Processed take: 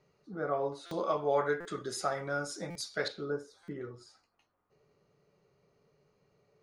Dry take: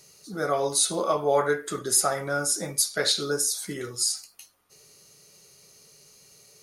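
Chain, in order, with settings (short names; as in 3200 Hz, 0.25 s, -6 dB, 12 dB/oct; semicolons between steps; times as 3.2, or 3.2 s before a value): LPF 1500 Hz 12 dB/oct, from 0.89 s 4100 Hz, from 3.08 s 1300 Hz; stuck buffer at 0.86/1.6/2.7/3.63, samples 256, times 8; gain -6.5 dB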